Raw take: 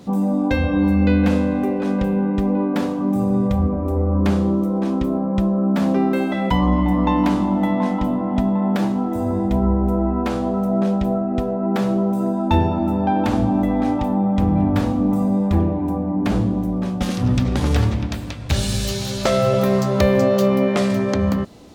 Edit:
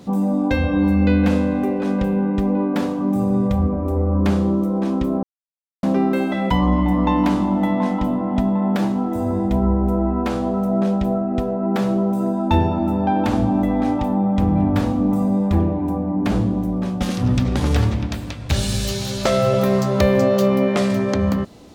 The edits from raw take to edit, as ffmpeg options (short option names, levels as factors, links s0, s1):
-filter_complex "[0:a]asplit=3[s0][s1][s2];[s0]atrim=end=5.23,asetpts=PTS-STARTPTS,afade=t=out:st=5.226:d=0.004:c=hsin[s3];[s1]atrim=start=5.23:end=5.83,asetpts=PTS-STARTPTS,volume=0[s4];[s2]atrim=start=5.83,asetpts=PTS-STARTPTS,afade=t=in:d=0.004:c=hsin[s5];[s3][s4][s5]concat=n=3:v=0:a=1"